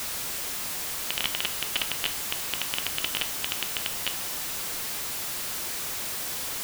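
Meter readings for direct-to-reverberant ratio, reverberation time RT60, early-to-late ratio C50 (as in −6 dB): 9.5 dB, 0.55 s, 15.0 dB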